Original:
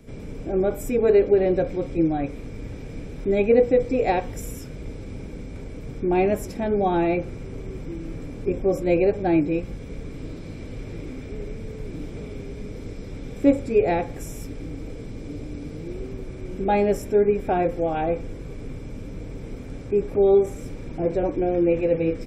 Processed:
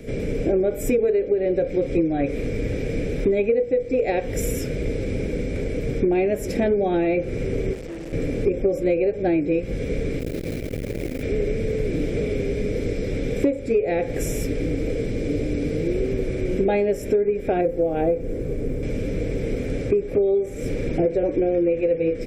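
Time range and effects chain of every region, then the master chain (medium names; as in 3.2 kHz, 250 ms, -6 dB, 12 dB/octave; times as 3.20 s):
7.73–8.13 s: tone controls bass -2 dB, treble +7 dB + valve stage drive 42 dB, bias 0.7
10.19–11.23 s: modulation noise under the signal 19 dB + transformer saturation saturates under 230 Hz
17.61–18.83 s: peaking EQ 3.4 kHz -10.5 dB 3 oct + hum notches 50/100/150/200 Hz + short-mantissa float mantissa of 6-bit
whole clip: graphic EQ 500/1000/2000 Hz +10/-12/+7 dB; compression 16:1, threshold -25 dBFS; trim +8 dB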